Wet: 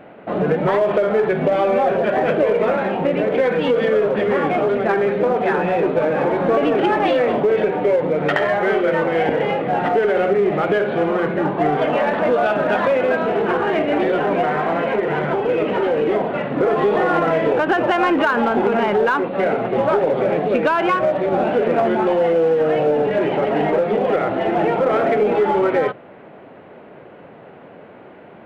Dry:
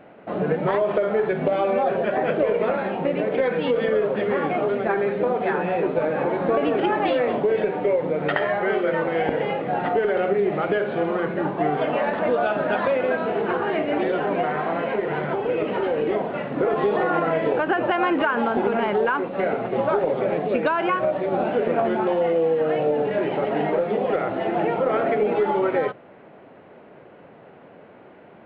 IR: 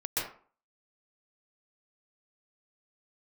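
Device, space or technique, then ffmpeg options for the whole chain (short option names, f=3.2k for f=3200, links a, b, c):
parallel distortion: -filter_complex "[0:a]asplit=2[a][b];[b]asoftclip=type=hard:threshold=-22dB,volume=-6dB[c];[a][c]amix=inputs=2:normalize=0,volume=2dB"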